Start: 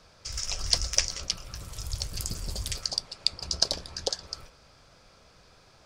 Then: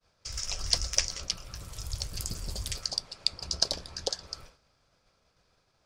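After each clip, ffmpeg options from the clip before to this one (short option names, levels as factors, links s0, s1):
-af "agate=range=0.0224:threshold=0.00398:ratio=3:detection=peak,volume=0.794"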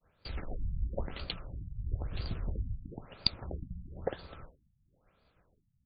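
-filter_complex "[0:a]asplit=2[s0][s1];[s1]acrusher=samples=38:mix=1:aa=0.000001,volume=0.282[s2];[s0][s2]amix=inputs=2:normalize=0,afftfilt=real='re*lt(b*sr/1024,210*pow(4900/210,0.5+0.5*sin(2*PI*1*pts/sr)))':imag='im*lt(b*sr/1024,210*pow(4900/210,0.5+0.5*sin(2*PI*1*pts/sr)))':win_size=1024:overlap=0.75"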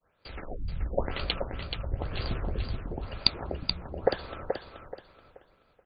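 -af "bass=f=250:g=-8,treble=f=4000:g=-7,dynaudnorm=f=120:g=9:m=2.82,aecho=1:1:429|858|1287|1716:0.501|0.14|0.0393|0.011,volume=1.19"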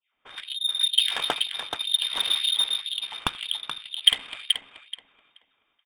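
-af "aecho=1:1:83|166:0.0708|0.0212,lowpass=f=3100:t=q:w=0.5098,lowpass=f=3100:t=q:w=0.6013,lowpass=f=3100:t=q:w=0.9,lowpass=f=3100:t=q:w=2.563,afreqshift=-3700,adynamicsmooth=sensitivity=5:basefreq=1300,volume=2.24"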